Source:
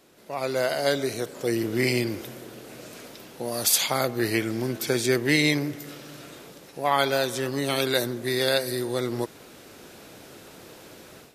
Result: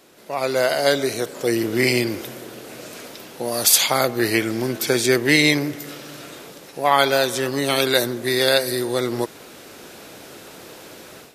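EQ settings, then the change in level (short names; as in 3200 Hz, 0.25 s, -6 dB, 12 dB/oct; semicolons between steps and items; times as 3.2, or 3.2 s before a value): low shelf 210 Hz -6 dB; +6.5 dB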